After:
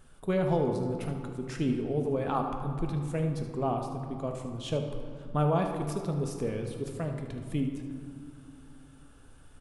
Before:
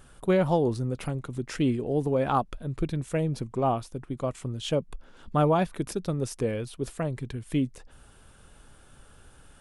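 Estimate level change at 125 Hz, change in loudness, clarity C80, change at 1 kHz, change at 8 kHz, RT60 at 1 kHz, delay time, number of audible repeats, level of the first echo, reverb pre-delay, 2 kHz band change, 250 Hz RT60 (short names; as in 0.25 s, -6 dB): -2.0 dB, -3.5 dB, 7.0 dB, -4.0 dB, -5.5 dB, 2.5 s, 75 ms, 1, -11.0 dB, 4 ms, -5.0 dB, 3.1 s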